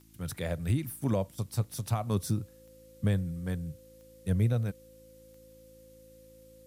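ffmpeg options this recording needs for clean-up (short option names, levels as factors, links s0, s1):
-af "adeclick=t=4,bandreject=f=54.6:t=h:w=4,bandreject=f=109.2:t=h:w=4,bandreject=f=163.8:t=h:w=4,bandreject=f=218.4:t=h:w=4,bandreject=f=273:t=h:w=4,bandreject=f=327.6:t=h:w=4,bandreject=f=520:w=30,agate=range=0.0891:threshold=0.00447"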